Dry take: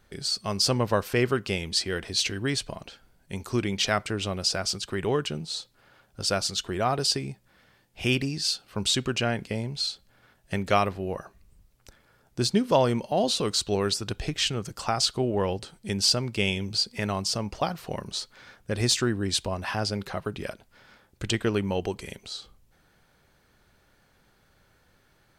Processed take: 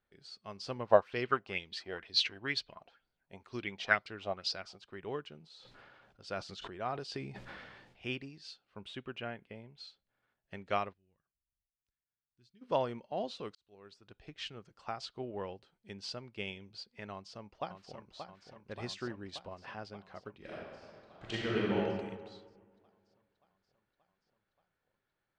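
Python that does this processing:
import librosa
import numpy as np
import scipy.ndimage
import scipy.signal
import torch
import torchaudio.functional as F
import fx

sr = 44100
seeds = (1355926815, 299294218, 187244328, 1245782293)

y = fx.bell_lfo(x, sr, hz=2.1, low_hz=660.0, high_hz=4800.0, db=14, at=(0.85, 4.83), fade=0.02)
y = fx.sustainer(y, sr, db_per_s=21.0, at=(5.38, 8.11))
y = fx.band_shelf(y, sr, hz=5600.0, db=-10.0, octaves=1.1, at=(8.77, 9.78))
y = fx.tone_stack(y, sr, knobs='6-0-2', at=(10.92, 12.61), fade=0.02)
y = fx.echo_throw(y, sr, start_s=17.12, length_s=1.02, ms=580, feedback_pct=75, wet_db=-5.0)
y = fx.reverb_throw(y, sr, start_s=20.37, length_s=1.4, rt60_s=2.2, drr_db=-6.5)
y = fx.edit(y, sr, fx.fade_in_span(start_s=13.55, length_s=0.87), tone=tone)
y = scipy.signal.sosfilt(scipy.signal.butter(2, 3400.0, 'lowpass', fs=sr, output='sos'), y)
y = fx.low_shelf(y, sr, hz=200.0, db=-7.5)
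y = fx.upward_expand(y, sr, threshold_db=-41.0, expansion=1.5)
y = F.gain(torch.from_numpy(y), -5.5).numpy()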